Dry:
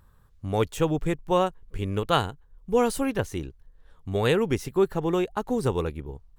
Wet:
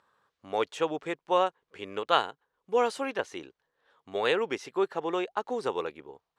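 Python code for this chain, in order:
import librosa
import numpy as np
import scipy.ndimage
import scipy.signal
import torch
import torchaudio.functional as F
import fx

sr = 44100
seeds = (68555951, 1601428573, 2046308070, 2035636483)

y = fx.bandpass_edges(x, sr, low_hz=490.0, high_hz=5000.0)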